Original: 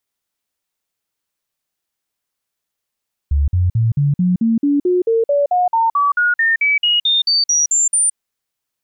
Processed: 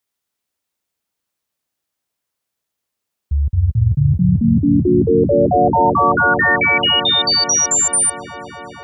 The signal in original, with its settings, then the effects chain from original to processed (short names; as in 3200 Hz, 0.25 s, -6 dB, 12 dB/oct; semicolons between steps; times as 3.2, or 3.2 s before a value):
stepped sine 71.6 Hz up, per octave 3, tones 22, 0.17 s, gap 0.05 s -11.5 dBFS
HPF 45 Hz; on a send: dark delay 0.233 s, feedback 83%, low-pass 960 Hz, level -5 dB